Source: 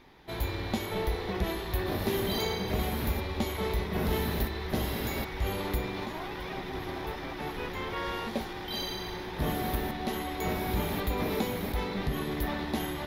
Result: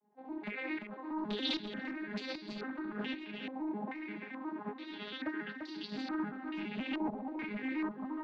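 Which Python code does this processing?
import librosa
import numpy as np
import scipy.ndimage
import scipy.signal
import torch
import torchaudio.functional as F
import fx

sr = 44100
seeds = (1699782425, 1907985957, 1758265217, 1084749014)

y = fx.vocoder_arp(x, sr, chord='major triad', root=56, every_ms=220)
y = fx.band_shelf(y, sr, hz=750.0, db=-9.5, octaves=1.7)
y = fx.dereverb_blind(y, sr, rt60_s=0.62)
y = fx.low_shelf(y, sr, hz=250.0, db=-10.0)
y = np.clip(y, -10.0 ** (-37.0 / 20.0), 10.0 ** (-37.0 / 20.0))
y = fx.tremolo_shape(y, sr, shape='saw_up', hz=0.8, depth_pct=90)
y = fx.stretch_grains(y, sr, factor=0.63, grain_ms=132.0)
y = y + 10.0 ** (-6.0 / 20.0) * np.pad(y, (int(344 * sr / 1000.0), 0))[:len(y)]
y = fx.filter_held_lowpass(y, sr, hz=2.3, low_hz=830.0, high_hz=4700.0)
y = y * 10.0 ** (6.5 / 20.0)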